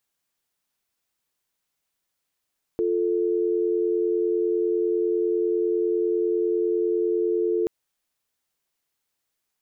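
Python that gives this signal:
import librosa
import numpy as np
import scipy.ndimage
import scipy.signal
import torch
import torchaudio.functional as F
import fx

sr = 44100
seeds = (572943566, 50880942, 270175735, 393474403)

y = fx.call_progress(sr, length_s=4.88, kind='dial tone', level_db=-23.0)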